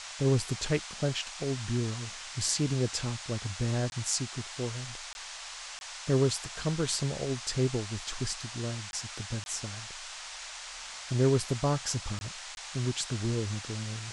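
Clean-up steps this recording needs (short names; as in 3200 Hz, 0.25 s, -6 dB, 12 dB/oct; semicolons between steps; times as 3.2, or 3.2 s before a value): interpolate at 3.9/5.13/5.79/8.91/9.44/12.19/12.55, 21 ms; noise print and reduce 30 dB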